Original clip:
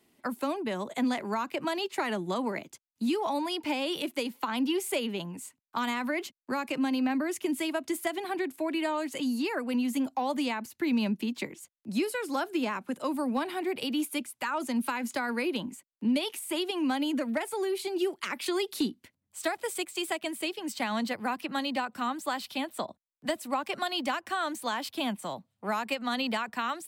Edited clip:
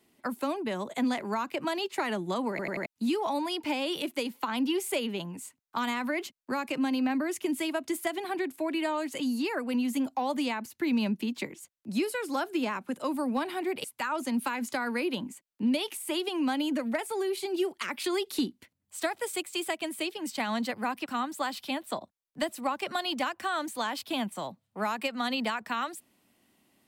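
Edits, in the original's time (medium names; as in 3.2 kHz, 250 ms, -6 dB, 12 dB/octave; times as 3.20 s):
2.50 s: stutter in place 0.09 s, 4 plays
13.84–14.26 s: delete
21.48–21.93 s: delete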